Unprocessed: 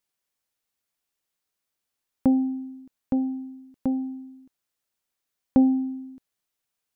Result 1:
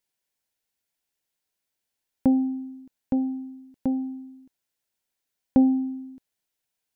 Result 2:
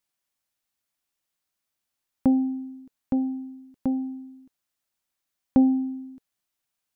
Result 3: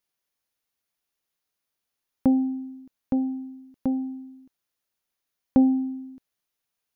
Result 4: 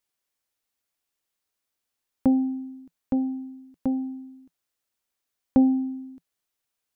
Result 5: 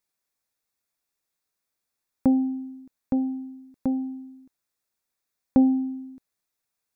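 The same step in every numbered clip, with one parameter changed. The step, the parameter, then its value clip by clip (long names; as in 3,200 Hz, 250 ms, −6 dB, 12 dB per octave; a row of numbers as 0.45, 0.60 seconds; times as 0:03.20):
notch filter, centre frequency: 1,200, 450, 7,900, 170, 3,000 Hertz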